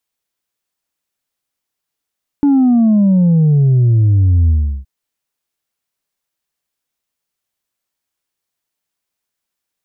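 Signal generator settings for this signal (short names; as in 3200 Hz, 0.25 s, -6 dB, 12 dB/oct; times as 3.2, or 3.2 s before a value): sub drop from 290 Hz, over 2.42 s, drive 2 dB, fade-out 0.36 s, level -8 dB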